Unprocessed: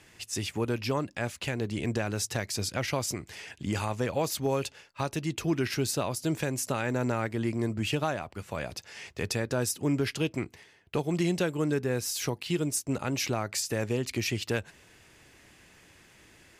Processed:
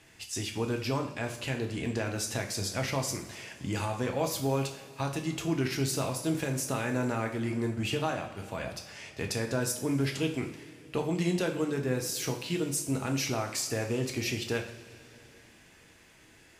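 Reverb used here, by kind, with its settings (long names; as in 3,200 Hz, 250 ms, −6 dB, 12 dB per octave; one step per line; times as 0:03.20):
coupled-rooms reverb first 0.51 s, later 3.5 s, from −18 dB, DRR 2.5 dB
level −3 dB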